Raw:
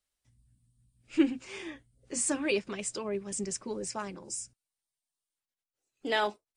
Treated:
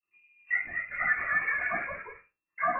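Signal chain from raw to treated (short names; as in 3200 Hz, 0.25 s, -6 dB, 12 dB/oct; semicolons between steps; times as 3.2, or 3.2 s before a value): spectral delay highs late, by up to 0.373 s; low shelf 350 Hz -5 dB; compressor 2.5:1, threshold -34 dBFS, peak gain reduction 9 dB; envelope flanger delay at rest 3 ms, full sweep at -36.5 dBFS; thinning echo 0.119 s, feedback 37%, high-pass 490 Hz, level -7 dB; reverb RT60 0.55 s, pre-delay 27 ms, DRR -10.5 dB; wide varispeed 2.35×; echoes that change speed 0.268 s, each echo +1 st, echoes 2, each echo -6 dB; inverted band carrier 2700 Hz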